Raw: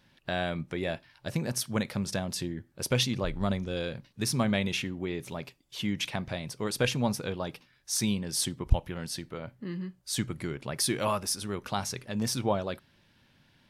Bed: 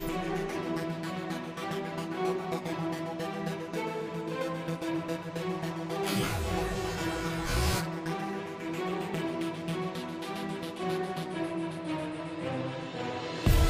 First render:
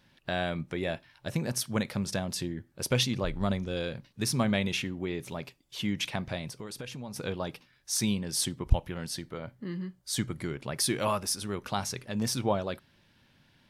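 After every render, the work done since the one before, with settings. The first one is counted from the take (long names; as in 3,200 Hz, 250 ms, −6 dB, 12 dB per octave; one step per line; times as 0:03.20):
0:00.74–0:01.38: notch filter 4,700 Hz
0:06.48–0:07.16: downward compressor, threshold −37 dBFS
0:09.15–0:10.47: notch filter 2,600 Hz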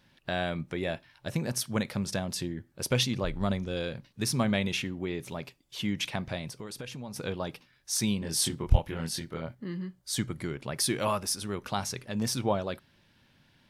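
0:08.19–0:09.55: double-tracking delay 25 ms −2 dB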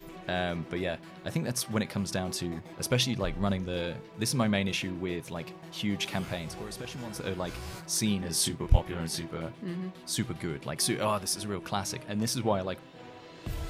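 mix in bed −12.5 dB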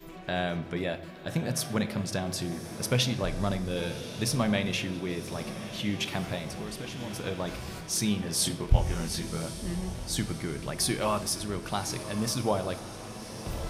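feedback delay with all-pass diffusion 1,119 ms, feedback 52%, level −12 dB
rectangular room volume 370 cubic metres, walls mixed, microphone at 0.37 metres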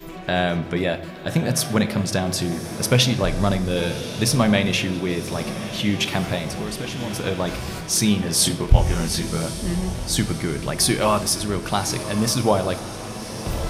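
level +9 dB
brickwall limiter −1 dBFS, peak gain reduction 1.5 dB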